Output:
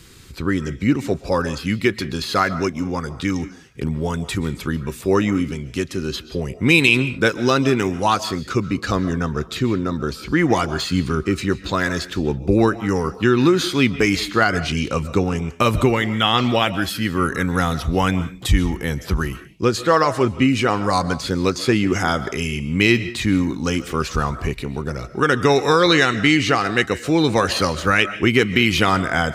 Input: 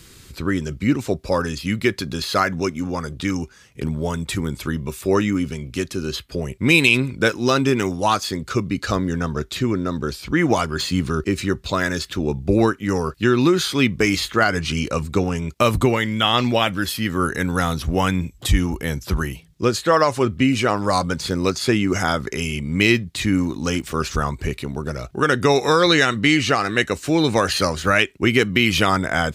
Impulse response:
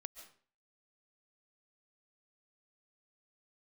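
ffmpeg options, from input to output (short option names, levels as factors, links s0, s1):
-filter_complex "[0:a]bandreject=f=610:w=12,asplit=2[s0][s1];[1:a]atrim=start_sample=2205,afade=t=out:st=0.29:d=0.01,atrim=end_sample=13230,highshelf=f=7300:g=-10.5[s2];[s1][s2]afir=irnorm=-1:irlink=0,volume=2.11[s3];[s0][s3]amix=inputs=2:normalize=0,volume=0.531"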